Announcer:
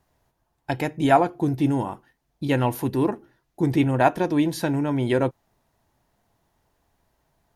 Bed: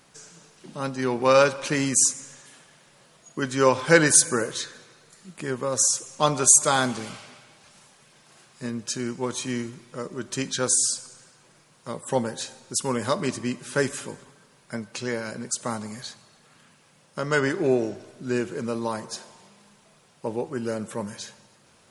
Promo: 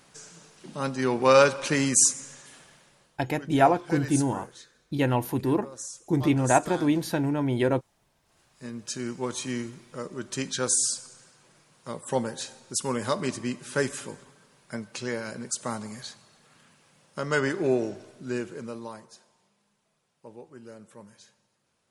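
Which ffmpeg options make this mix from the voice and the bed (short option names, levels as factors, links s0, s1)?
-filter_complex "[0:a]adelay=2500,volume=0.75[s0];[1:a]volume=5.62,afade=t=out:st=2.68:d=0.55:silence=0.133352,afade=t=in:st=8.22:d=0.91:silence=0.177828,afade=t=out:st=18:d=1.14:silence=0.199526[s1];[s0][s1]amix=inputs=2:normalize=0"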